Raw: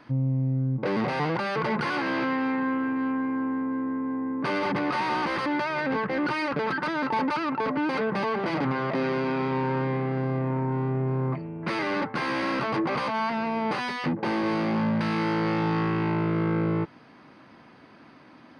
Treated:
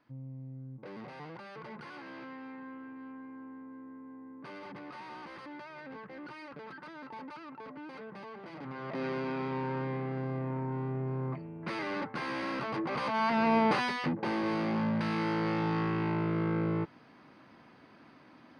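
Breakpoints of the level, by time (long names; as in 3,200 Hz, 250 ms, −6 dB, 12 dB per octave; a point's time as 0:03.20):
0:08.54 −19 dB
0:09.05 −8 dB
0:12.86 −8 dB
0:13.54 +3 dB
0:14.14 −5.5 dB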